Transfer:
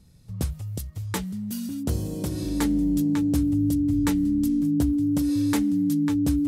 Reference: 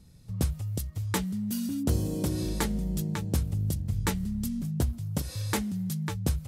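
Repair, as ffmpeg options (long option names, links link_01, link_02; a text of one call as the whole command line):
ffmpeg -i in.wav -af "bandreject=frequency=290:width=30" out.wav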